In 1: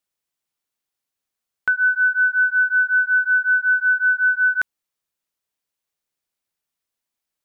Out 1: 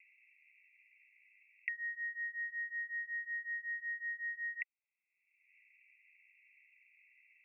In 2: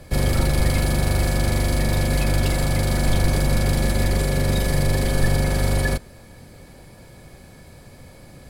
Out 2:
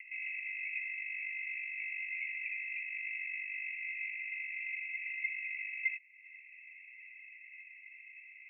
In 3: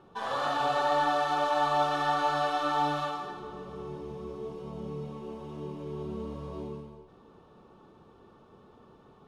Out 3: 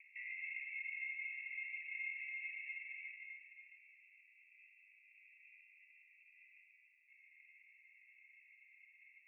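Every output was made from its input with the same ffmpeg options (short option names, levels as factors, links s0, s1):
-af "aeval=exprs='val(0)*sin(2*PI*370*n/s)':c=same,acompressor=mode=upward:threshold=0.0447:ratio=2.5,asuperpass=centerf=2300:order=20:qfactor=3,volume=1.19"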